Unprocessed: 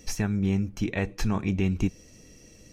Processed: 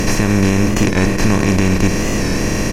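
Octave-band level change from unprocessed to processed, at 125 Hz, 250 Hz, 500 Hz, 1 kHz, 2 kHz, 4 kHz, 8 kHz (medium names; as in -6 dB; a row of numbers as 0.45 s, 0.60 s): +12.5 dB, +13.0 dB, +16.5 dB, +17.0 dB, +17.0 dB, +17.5 dB, +18.5 dB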